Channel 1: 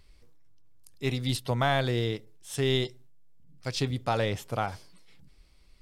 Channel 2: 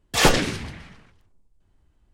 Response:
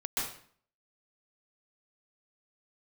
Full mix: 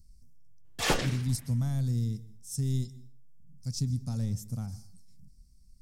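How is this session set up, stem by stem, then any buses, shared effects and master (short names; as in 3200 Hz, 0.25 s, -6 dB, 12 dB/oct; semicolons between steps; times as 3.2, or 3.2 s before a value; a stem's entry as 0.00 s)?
+1.5 dB, 0.00 s, send -23.5 dB, EQ curve 230 Hz 0 dB, 340 Hz -20 dB, 600 Hz -25 dB, 3200 Hz -29 dB, 5600 Hz -1 dB
+0.5 dB, 0.65 s, no send, auto duck -16 dB, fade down 1.35 s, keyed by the first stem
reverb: on, RT60 0.50 s, pre-delay 0.12 s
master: dry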